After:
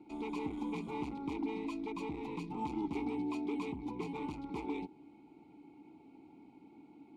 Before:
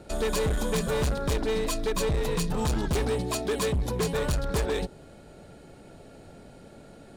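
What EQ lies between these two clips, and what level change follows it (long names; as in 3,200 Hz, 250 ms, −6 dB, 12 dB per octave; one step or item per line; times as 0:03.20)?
formant filter u
Butterworth band-reject 1,700 Hz, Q 3.5
+3.0 dB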